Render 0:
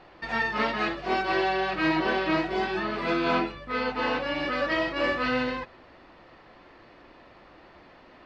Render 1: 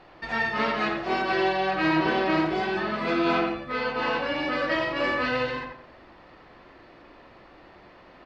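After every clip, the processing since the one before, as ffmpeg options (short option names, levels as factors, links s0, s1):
-filter_complex "[0:a]asplit=2[s0][s1];[s1]adelay=89,lowpass=f=2400:p=1,volume=0.668,asplit=2[s2][s3];[s3]adelay=89,lowpass=f=2400:p=1,volume=0.33,asplit=2[s4][s5];[s5]adelay=89,lowpass=f=2400:p=1,volume=0.33,asplit=2[s6][s7];[s7]adelay=89,lowpass=f=2400:p=1,volume=0.33[s8];[s0][s2][s4][s6][s8]amix=inputs=5:normalize=0"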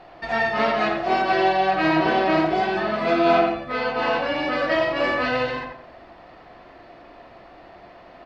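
-af "equalizer=f=690:w=5.7:g=11,volume=1.33"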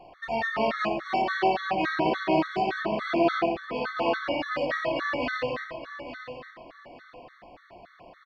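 -af "aecho=1:1:865|1730|2595:0.282|0.0761|0.0205,afftfilt=real='re*gt(sin(2*PI*3.5*pts/sr)*(1-2*mod(floor(b*sr/1024/1100),2)),0)':imag='im*gt(sin(2*PI*3.5*pts/sr)*(1-2*mod(floor(b*sr/1024/1100),2)),0)':win_size=1024:overlap=0.75,volume=0.708"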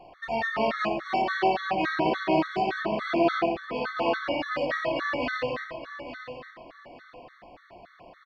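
-af anull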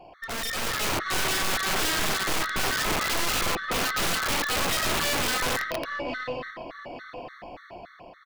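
-af "aeval=exprs='(tanh(31.6*val(0)+0.3)-tanh(0.3))/31.6':c=same,aeval=exprs='(mod(31.6*val(0)+1,2)-1)/31.6':c=same,dynaudnorm=f=190:g=7:m=2.24,volume=1.26"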